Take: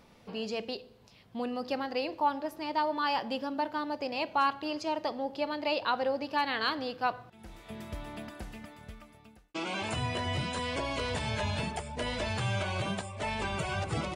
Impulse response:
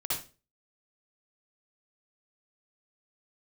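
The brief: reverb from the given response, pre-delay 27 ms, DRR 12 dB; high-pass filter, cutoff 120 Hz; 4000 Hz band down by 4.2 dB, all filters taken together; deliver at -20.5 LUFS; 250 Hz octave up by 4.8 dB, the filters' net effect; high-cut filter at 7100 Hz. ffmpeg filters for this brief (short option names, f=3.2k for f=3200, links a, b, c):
-filter_complex "[0:a]highpass=120,lowpass=7.1k,equalizer=f=250:t=o:g=6,equalizer=f=4k:t=o:g=-5.5,asplit=2[a][b];[1:a]atrim=start_sample=2205,adelay=27[c];[b][c]afir=irnorm=-1:irlink=0,volume=-17.5dB[d];[a][d]amix=inputs=2:normalize=0,volume=12dB"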